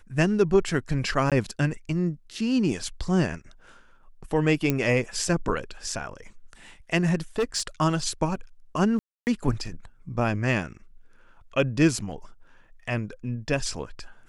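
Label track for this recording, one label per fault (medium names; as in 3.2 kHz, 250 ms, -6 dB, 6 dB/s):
1.300000	1.320000	dropout 17 ms
4.700000	4.700000	pop -9 dBFS
7.380000	7.610000	clipped -20 dBFS
8.990000	9.270000	dropout 279 ms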